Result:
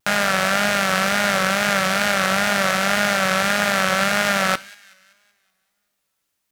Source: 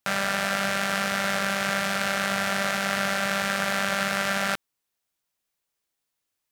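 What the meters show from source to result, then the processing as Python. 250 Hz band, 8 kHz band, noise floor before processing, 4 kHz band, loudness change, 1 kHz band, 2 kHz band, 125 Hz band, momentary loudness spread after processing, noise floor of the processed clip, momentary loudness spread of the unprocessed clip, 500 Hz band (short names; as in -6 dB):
+6.5 dB, +6.5 dB, -82 dBFS, +6.5 dB, +6.5 dB, +7.0 dB, +6.5 dB, +6.5 dB, 0 LU, -75 dBFS, 0 LU, +7.5 dB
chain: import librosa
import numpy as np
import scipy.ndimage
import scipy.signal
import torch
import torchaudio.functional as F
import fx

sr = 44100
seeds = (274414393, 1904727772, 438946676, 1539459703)

y = fx.echo_wet_highpass(x, sr, ms=190, feedback_pct=47, hz=1800.0, wet_db=-19.5)
y = fx.rev_double_slope(y, sr, seeds[0], early_s=0.47, late_s=3.0, knee_db=-27, drr_db=17.5)
y = fx.wow_flutter(y, sr, seeds[1], rate_hz=2.1, depth_cents=73.0)
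y = F.gain(torch.from_numpy(y), 6.5).numpy()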